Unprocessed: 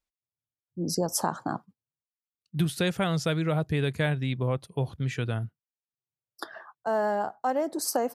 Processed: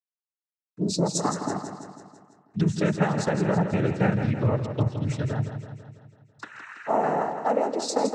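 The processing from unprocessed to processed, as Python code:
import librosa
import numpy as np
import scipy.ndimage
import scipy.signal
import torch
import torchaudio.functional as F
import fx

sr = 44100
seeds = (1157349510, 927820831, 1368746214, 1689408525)

p1 = fx.spec_repair(x, sr, seeds[0], start_s=6.62, length_s=0.37, low_hz=1300.0, high_hz=5900.0, source='before')
p2 = np.where(np.abs(p1) >= 10.0 ** (-51.0 / 20.0), p1, 0.0)
p3 = fx.env_phaser(p2, sr, low_hz=500.0, high_hz=3600.0, full_db=-24.0)
p4 = fx.noise_vocoder(p3, sr, seeds[1], bands=12)
p5 = p4 + fx.echo_feedback(p4, sr, ms=165, feedback_pct=56, wet_db=-8.5, dry=0)
y = p5 * librosa.db_to_amplitude(3.5)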